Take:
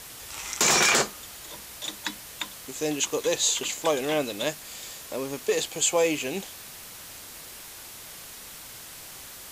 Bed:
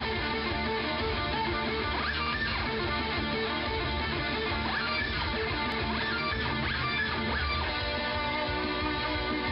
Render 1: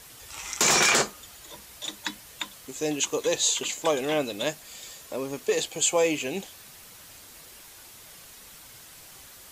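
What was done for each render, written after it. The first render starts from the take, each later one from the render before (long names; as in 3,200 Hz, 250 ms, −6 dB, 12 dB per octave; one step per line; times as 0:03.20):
broadband denoise 6 dB, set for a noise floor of −43 dBFS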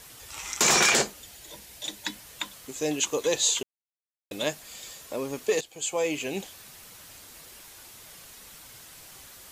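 0:00.90–0:02.14: parametric band 1,200 Hz −8.5 dB 0.47 octaves
0:03.63–0:04.31: silence
0:05.61–0:06.38: fade in, from −16 dB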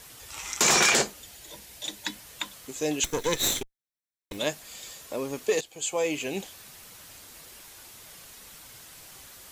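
0:03.04–0:04.38: lower of the sound and its delayed copy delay 0.53 ms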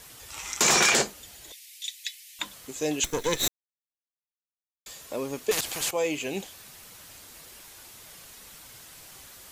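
0:01.52–0:02.39: Butterworth high-pass 2,000 Hz 48 dB per octave
0:03.48–0:04.86: silence
0:05.51–0:05.91: every bin compressed towards the loudest bin 4 to 1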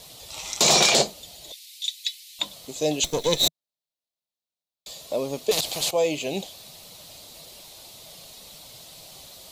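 graphic EQ with 15 bands 160 Hz +6 dB, 630 Hz +10 dB, 1,600 Hz −10 dB, 4,000 Hz +10 dB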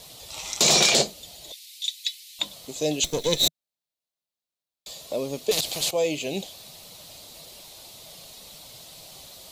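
dynamic equaliser 910 Hz, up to −5 dB, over −39 dBFS, Q 1.2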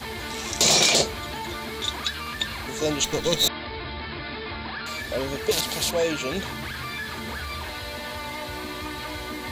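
mix in bed −3 dB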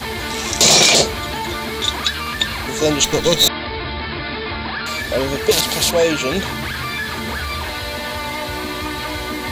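level +8.5 dB
brickwall limiter −1 dBFS, peak gain reduction 3 dB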